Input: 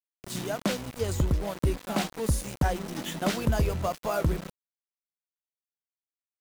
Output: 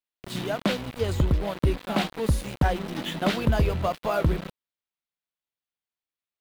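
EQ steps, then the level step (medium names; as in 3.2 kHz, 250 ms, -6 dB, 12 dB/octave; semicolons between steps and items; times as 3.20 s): resonant high shelf 4.8 kHz -7 dB, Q 1.5; +3.0 dB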